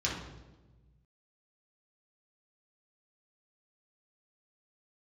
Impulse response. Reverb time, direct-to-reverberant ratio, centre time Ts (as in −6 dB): 1.2 s, −5.5 dB, 48 ms